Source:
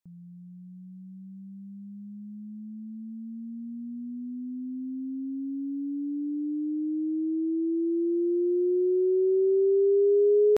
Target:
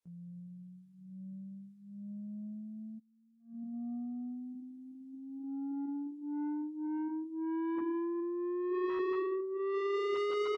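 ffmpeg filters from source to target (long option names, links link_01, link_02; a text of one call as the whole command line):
ffmpeg -i in.wav -filter_complex "[0:a]aecho=1:1:143:0.0668,flanger=delay=17:depth=7.5:speed=0.19,adynamicequalizer=threshold=0.00631:dfrequency=280:dqfactor=4.8:tfrequency=280:tqfactor=4.8:attack=5:release=100:ratio=0.375:range=2:mode=cutabove:tftype=bell,asplit=3[link_01][link_02][link_03];[link_01]afade=type=out:start_time=2.98:duration=0.02[link_04];[link_02]agate=range=-25dB:threshold=-39dB:ratio=16:detection=peak,afade=type=in:start_time=2.98:duration=0.02,afade=type=out:start_time=3.72:duration=0.02[link_05];[link_03]afade=type=in:start_time=3.72:duration=0.02[link_06];[link_04][link_05][link_06]amix=inputs=3:normalize=0,asplit=3[link_07][link_08][link_09];[link_07]afade=type=out:start_time=5.94:duration=0.02[link_10];[link_08]equalizer=frequency=470:width=2.4:gain=8,afade=type=in:start_time=5.94:duration=0.02,afade=type=out:start_time=6.86:duration=0.02[link_11];[link_09]afade=type=in:start_time=6.86:duration=0.02[link_12];[link_10][link_11][link_12]amix=inputs=3:normalize=0,asoftclip=type=tanh:threshold=-33.5dB,highpass=frequency=170:poles=1,asplit=3[link_13][link_14][link_15];[link_13]afade=type=out:start_time=8.2:duration=0.02[link_16];[link_14]adynamicsmooth=sensitivity=1.5:basefreq=510,afade=type=in:start_time=8.2:duration=0.02,afade=type=out:start_time=8.73:duration=0.02[link_17];[link_15]afade=type=in:start_time=8.73:duration=0.02[link_18];[link_16][link_17][link_18]amix=inputs=3:normalize=0,volume=1.5dB" -ar 44100 -c:a aac -b:a 32k out.aac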